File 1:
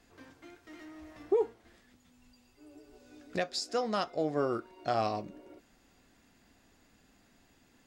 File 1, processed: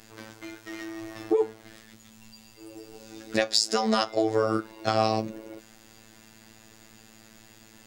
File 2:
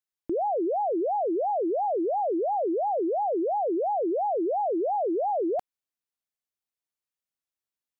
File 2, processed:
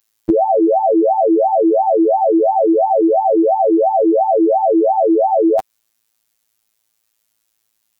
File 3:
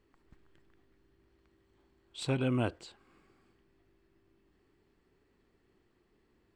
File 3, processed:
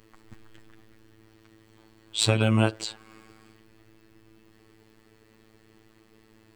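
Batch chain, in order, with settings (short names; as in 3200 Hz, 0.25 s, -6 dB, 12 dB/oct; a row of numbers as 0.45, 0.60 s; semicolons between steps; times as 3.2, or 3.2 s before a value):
high shelf 3600 Hz +7 dB; compressor 10:1, threshold -29 dBFS; robotiser 110 Hz; normalise peaks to -2 dBFS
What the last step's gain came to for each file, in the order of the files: +12.5, +20.0, +15.0 dB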